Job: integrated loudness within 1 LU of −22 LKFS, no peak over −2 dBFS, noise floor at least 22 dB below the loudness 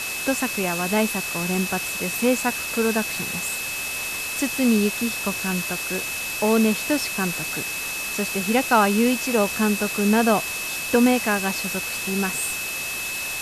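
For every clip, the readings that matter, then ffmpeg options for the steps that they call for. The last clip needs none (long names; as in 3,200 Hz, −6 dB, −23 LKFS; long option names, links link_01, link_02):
interfering tone 2,600 Hz; level of the tone −29 dBFS; background noise floor −29 dBFS; target noise floor −45 dBFS; integrated loudness −22.5 LKFS; sample peak −6.0 dBFS; target loudness −22.0 LKFS
→ -af "bandreject=frequency=2600:width=30"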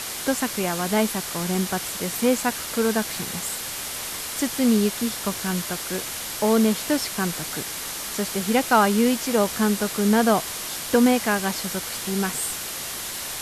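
interfering tone none found; background noise floor −32 dBFS; target noise floor −46 dBFS
→ -af "afftdn=noise_reduction=14:noise_floor=-32"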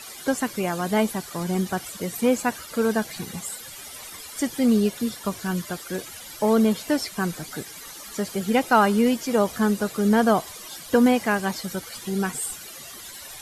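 background noise floor −41 dBFS; target noise floor −46 dBFS
→ -af "afftdn=noise_reduction=6:noise_floor=-41"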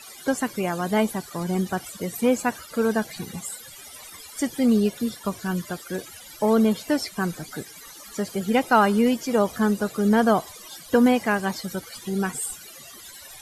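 background noise floor −44 dBFS; target noise floor −46 dBFS
→ -af "afftdn=noise_reduction=6:noise_floor=-44"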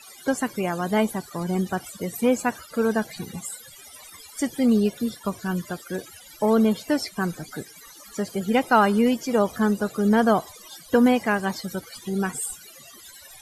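background noise floor −47 dBFS; integrated loudness −24.0 LKFS; sample peak −6.0 dBFS; target loudness −22.0 LKFS
→ -af "volume=2dB"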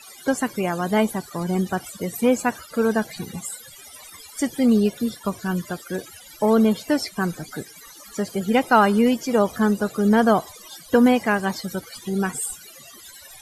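integrated loudness −22.0 LKFS; sample peak −4.0 dBFS; background noise floor −45 dBFS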